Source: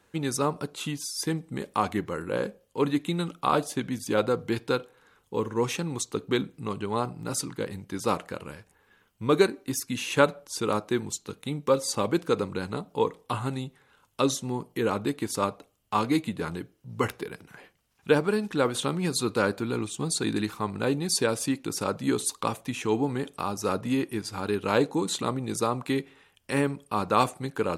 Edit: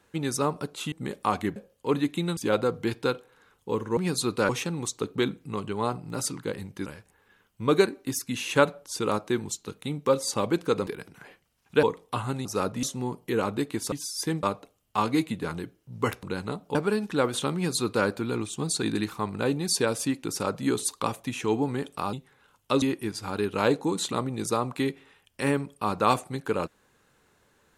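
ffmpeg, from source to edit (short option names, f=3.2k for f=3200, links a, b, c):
-filter_complex "[0:a]asplit=17[a][b][c][d][e][f][g][h][i][j][k][l][m][n][o][p][q];[a]atrim=end=0.922[r];[b]atrim=start=1.428:end=2.072[s];[c]atrim=start=2.468:end=3.282[t];[d]atrim=start=4.018:end=5.622[u];[e]atrim=start=18.948:end=19.472[v];[f]atrim=start=5.618:end=7.992[w];[g]atrim=start=8.468:end=12.482[x];[h]atrim=start=17.198:end=18.162[y];[i]atrim=start=12.998:end=13.622[z];[j]atrim=start=23.538:end=23.922[aa];[k]atrim=start=14.308:end=15.402[ab];[l]atrim=start=0.918:end=1.432[ac];[m]atrim=start=15.398:end=17.202[ad];[n]atrim=start=12.478:end=13.002[ae];[o]atrim=start=18.158:end=23.542[af];[p]atrim=start=13.618:end=14.312[ag];[q]atrim=start=23.918[ah];[r][s]acrossfade=d=0.004:c1=hsin:c2=hsin[ai];[ai][t]acrossfade=d=0.004:c1=hsin:c2=hsin[aj];[aj][u]acrossfade=d=0.004:c1=hsin:c2=hsin[ak];[ak][v]acrossfade=d=0.004:c1=hsin:c2=hsin[al];[al][w]acrossfade=d=0.004:c1=hsin:c2=hsin[am];[am][x]acrossfade=d=0.004:c1=hsin:c2=hsin[an];[an][y]acrossfade=d=0.004:c1=hsin:c2=hsin[ao];[ao][z]acrossfade=d=0.004:c1=hsin:c2=hsin[ap];[ap][aa]acrossfade=d=0.004:c1=hsin:c2=hsin[aq];[aq][ab]acrossfade=d=0.004:c1=hsin:c2=hsin[ar];[ar][ac]acrossfade=d=0.004:c1=hsin:c2=hsin[as];[as][ad]acrossfade=d=0.004:c1=hsin:c2=hsin[at];[at][ae]acrossfade=d=0.004:c1=hsin:c2=hsin[au];[au][af]acrossfade=d=0.004:c1=hsin:c2=hsin[av];[av][ag]acrossfade=d=0.004:c1=hsin:c2=hsin[aw];[aw][ah]acrossfade=d=0.004:c1=hsin:c2=hsin"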